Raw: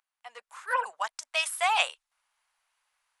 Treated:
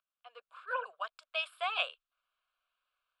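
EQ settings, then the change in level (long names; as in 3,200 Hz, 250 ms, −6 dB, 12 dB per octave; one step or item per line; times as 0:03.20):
high-frequency loss of the air 180 metres
high-shelf EQ 10,000 Hz +11.5 dB
phaser with its sweep stopped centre 1,300 Hz, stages 8
−3.0 dB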